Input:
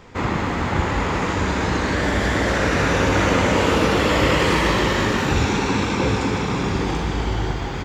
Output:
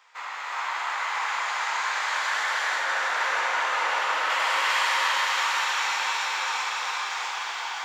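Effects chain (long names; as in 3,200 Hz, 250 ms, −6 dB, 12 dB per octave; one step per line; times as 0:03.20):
high-pass filter 900 Hz 24 dB per octave
0:02.43–0:04.30: spectral tilt −3 dB per octave
echo with a time of its own for lows and highs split 1,800 Hz, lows 400 ms, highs 644 ms, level −5 dB
reverb whose tail is shaped and stops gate 430 ms rising, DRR −4 dB
level −7.5 dB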